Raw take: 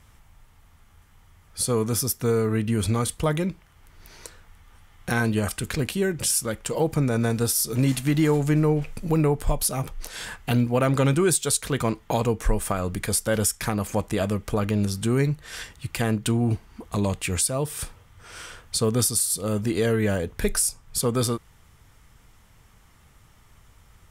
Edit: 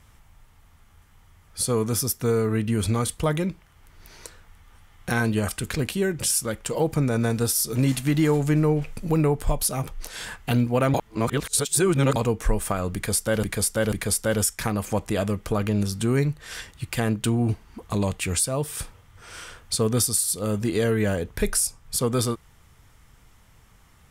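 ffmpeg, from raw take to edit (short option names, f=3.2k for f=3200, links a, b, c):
-filter_complex "[0:a]asplit=5[a][b][c][d][e];[a]atrim=end=10.942[f];[b]atrim=start=10.938:end=12.162,asetpts=PTS-STARTPTS,areverse[g];[c]atrim=start=12.158:end=13.432[h];[d]atrim=start=12.938:end=13.432[i];[e]atrim=start=12.938[j];[f][g]acrossfade=d=0.004:c1=hsin:c2=hsin[k];[k][h]acrossfade=d=0.004:c1=hsin:c2=hsin[l];[l][i]acrossfade=d=0.004:c1=hsin:c2=hsin[m];[m][j]acrossfade=d=0.004:c1=hsin:c2=hsin"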